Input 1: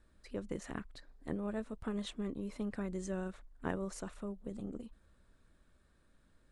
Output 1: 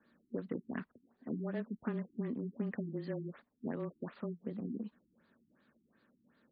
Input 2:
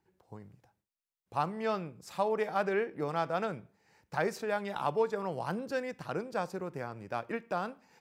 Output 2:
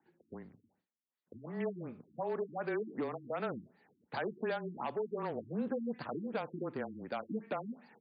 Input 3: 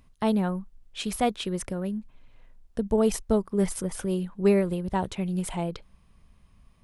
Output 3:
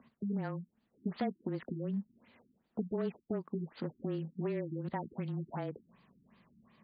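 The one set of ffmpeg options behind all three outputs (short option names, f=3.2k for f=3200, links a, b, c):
-af "acompressor=threshold=-33dB:ratio=12,asoftclip=type=hard:threshold=-32dB,afreqshift=-20,highpass=190,equalizer=f=230:t=q:w=4:g=9,equalizer=f=1.8k:t=q:w=4:g=4,equalizer=f=4.8k:t=q:w=4:g=7,lowpass=f=9.3k:w=0.5412,lowpass=f=9.3k:w=1.3066,afftfilt=real='re*lt(b*sr/1024,340*pow(4900/340,0.5+0.5*sin(2*PI*2.7*pts/sr)))':imag='im*lt(b*sr/1024,340*pow(4900/340,0.5+0.5*sin(2*PI*2.7*pts/sr)))':win_size=1024:overlap=0.75,volume=2dB"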